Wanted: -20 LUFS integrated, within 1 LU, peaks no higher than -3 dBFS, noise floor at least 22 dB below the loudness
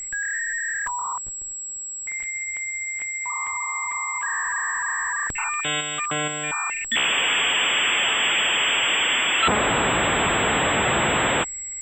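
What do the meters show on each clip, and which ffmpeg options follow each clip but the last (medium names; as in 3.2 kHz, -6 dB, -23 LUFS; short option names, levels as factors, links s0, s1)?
steady tone 7.7 kHz; tone level -30 dBFS; loudness -21.5 LUFS; peak level -8.5 dBFS; loudness target -20.0 LUFS
-> -af "bandreject=f=7700:w=30"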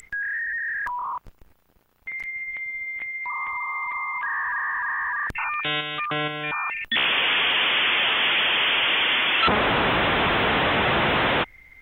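steady tone not found; loudness -22.0 LUFS; peak level -9.0 dBFS; loudness target -20.0 LUFS
-> -af "volume=1.26"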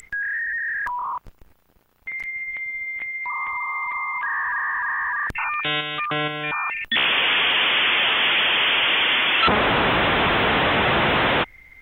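loudness -20.0 LUFS; peak level -7.0 dBFS; noise floor -57 dBFS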